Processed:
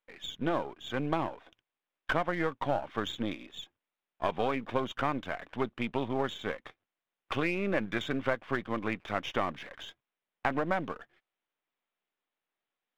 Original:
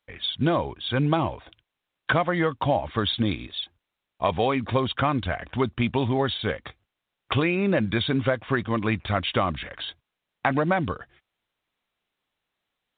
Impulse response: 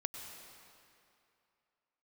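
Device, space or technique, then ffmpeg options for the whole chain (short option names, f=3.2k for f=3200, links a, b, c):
crystal radio: -filter_complex "[0:a]asettb=1/sr,asplit=3[a][b][c];[a]atrim=end=7.334[d];[b]atrim=start=7.33:end=8.35,asetpts=PTS-STARTPTS,afade=t=in:d=0.004:c=qsin,afade=t=out:st=1.016:d=0.004:c=qsin,equalizer=f=1.7k:t=o:w=1.1:g=3[e];[c]atrim=start=8.346[f];[d][e]acrossfade=d=0.004:c1=hsin:c2=qsin[g];[g][f]acrossfade=d=0.004:c1=qsin:c2=hsin,highpass=220,lowpass=2.9k,aeval=exprs='if(lt(val(0),0),0.447*val(0),val(0))':c=same,volume=-4.5dB"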